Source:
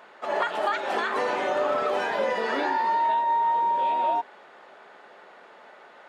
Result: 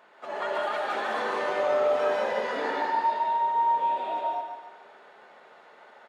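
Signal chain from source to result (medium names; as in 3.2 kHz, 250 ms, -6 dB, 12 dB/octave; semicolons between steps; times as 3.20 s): feedback delay 144 ms, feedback 39%, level -7 dB; gated-style reverb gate 230 ms rising, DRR -1.5 dB; trim -7.5 dB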